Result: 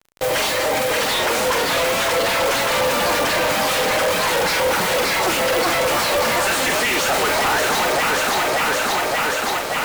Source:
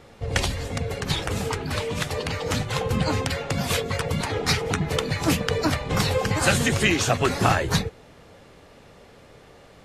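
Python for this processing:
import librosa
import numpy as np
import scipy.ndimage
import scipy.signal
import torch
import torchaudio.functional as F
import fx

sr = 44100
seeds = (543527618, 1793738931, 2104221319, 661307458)

y = fx.mod_noise(x, sr, seeds[0], snr_db=14)
y = fx.pitch_keep_formants(y, sr, semitones=2.0)
y = scipy.signal.sosfilt(scipy.signal.butter(2, 590.0, 'highpass', fs=sr, output='sos'), y)
y = fx.doubler(y, sr, ms=45.0, db=-11.0)
y = fx.echo_alternate(y, sr, ms=289, hz=910.0, feedback_pct=81, wet_db=-6)
y = fx.fuzz(y, sr, gain_db=47.0, gate_db=-44.0)
y = fx.high_shelf(y, sr, hz=3200.0, db=-7.5)
y = y * 10.0 ** (-2.0 / 20.0)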